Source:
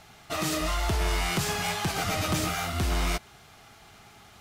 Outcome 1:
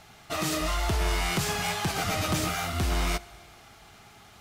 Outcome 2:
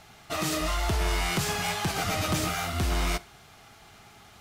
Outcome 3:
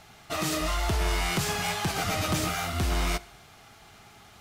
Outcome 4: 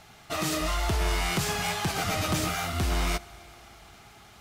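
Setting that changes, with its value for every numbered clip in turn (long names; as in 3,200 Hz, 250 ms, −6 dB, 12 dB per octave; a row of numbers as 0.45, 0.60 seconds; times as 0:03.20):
four-comb reverb, RT60: 2.1, 0.35, 0.83, 4.5 seconds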